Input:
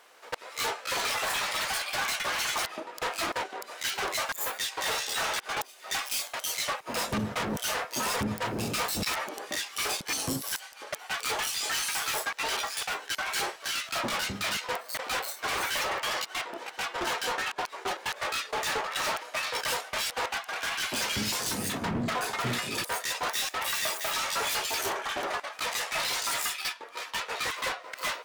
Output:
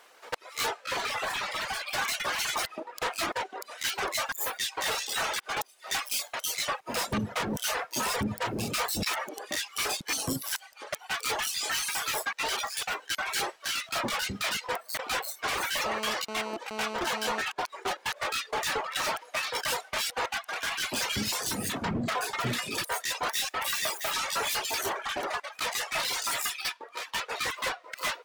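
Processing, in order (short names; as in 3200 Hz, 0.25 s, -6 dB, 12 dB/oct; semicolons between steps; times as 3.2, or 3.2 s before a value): reverb removal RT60 0.7 s; 0.85–1.87 high shelf 5700 Hz -10.5 dB; 15.86–17.41 GSM buzz -38 dBFS; gain +1 dB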